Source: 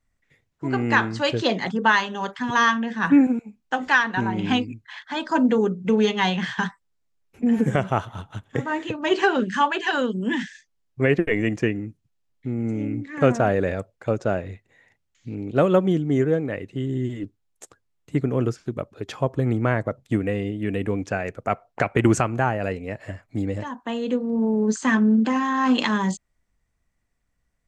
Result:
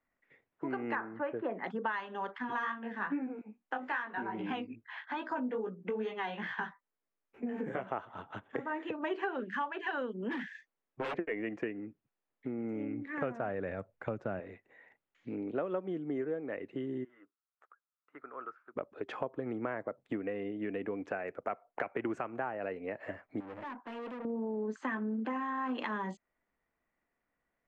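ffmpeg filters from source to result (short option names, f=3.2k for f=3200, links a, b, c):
-filter_complex "[0:a]asettb=1/sr,asplit=3[a][b][c];[a]atrim=end=0.954[d];[b]atrim=start=0.95:end=1.64,asetpts=PTS-STARTPTS,afade=t=in:d=0.004:c=qsin,afade=t=out:st=0.686:d=0.004:c=qsin,lowpass=f=1.9k:w=0.5412,lowpass=f=1.9k:w=1.3066[e];[c]atrim=start=1.636[f];[d][e]acrossfade=d=0.004:c1=hsin:c2=qsin[g];[g][f]acrossfade=d=0.004:c1=qsin:c2=hsin,asettb=1/sr,asplit=3[h][i][j];[h]atrim=end=2.384[k];[i]atrim=start=2.38:end=7.87,asetpts=PTS-STARTPTS,afade=t=in:d=0.004:c=qsin,afade=t=out:st=5.486:d=0.004:c=qsin,flanger=delay=16:depth=4.3:speed=2.4[l];[j]atrim=start=7.866[m];[k][l]acrossfade=d=0.004:c1=hsin:c2=qsin[n];[n][m]acrossfade=d=0.004:c1=qsin:c2=hsin,asettb=1/sr,asplit=3[o][p][q];[o]atrim=end=10.304[r];[p]atrim=start=10.3:end=11.18,asetpts=PTS-STARTPTS,afade=t=in:d=0.004:c=qsin,afade=t=out:st=0.876:d=0.004:c=qsin,aeval=exprs='0.0891*(abs(mod(val(0)/0.0891+3,4)-2)-1)':c=same[s];[q]atrim=start=11.176[t];[r][s]acrossfade=d=0.004:c1=hsin:c2=qsin[u];[u][t]acrossfade=d=0.004:c1=qsin:c2=hsin,asettb=1/sr,asplit=3[v][w][x];[v]atrim=end=12.604[y];[w]atrim=start=12.6:end=14.4,asetpts=PTS-STARTPTS,afade=t=in:d=0.004:c=qsin,afade=t=out:st=1.796:d=0.004:c=qsin,asubboost=boost=11.5:cutoff=160[z];[x]atrim=start=14.396[aa];[y][z]acrossfade=d=0.004:c1=hsin:c2=qsin[ab];[ab][aa]acrossfade=d=0.004:c1=qsin:c2=hsin,asplit=3[ac][ad][ae];[ac]afade=t=out:st=17.03:d=0.02[af];[ad]bandpass=f=1.3k:t=q:w=5.7,afade=t=in:st=17.03:d=0.02,afade=t=out:st=18.75:d=0.02[ag];[ae]afade=t=in:st=18.75:d=0.02[ah];[af][ag][ah]amix=inputs=3:normalize=0,asettb=1/sr,asplit=3[ai][aj][ak];[ai]atrim=end=23.404[al];[aj]atrim=start=23.4:end=24.25,asetpts=PTS-STARTPTS,afade=t=in:d=0.004:c=qsin,afade=t=out:st=0.846:d=0.004:c=qsin,aeval=exprs='(tanh(79.4*val(0)+0.25)-tanh(0.25))/79.4':c=same[am];[ak]atrim=start=24.246[an];[al][am]acrossfade=d=0.004:c1=hsin:c2=qsin[ao];[ao][an]acrossfade=d=0.004:c1=qsin:c2=hsin,acrossover=split=240 2600:gain=0.1 1 0.0631[ap][aq][ar];[ap][aq][ar]amix=inputs=3:normalize=0,acompressor=threshold=-35dB:ratio=4"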